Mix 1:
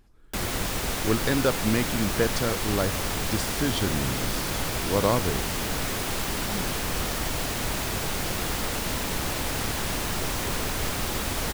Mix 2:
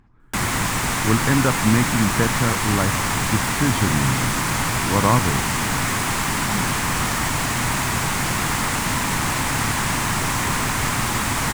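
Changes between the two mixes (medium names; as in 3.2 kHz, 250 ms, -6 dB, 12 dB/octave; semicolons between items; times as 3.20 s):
speech: add tape spacing loss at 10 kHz 28 dB; master: add ten-band graphic EQ 125 Hz +10 dB, 250 Hz +6 dB, 500 Hz -4 dB, 1 kHz +11 dB, 2 kHz +8 dB, 8 kHz +9 dB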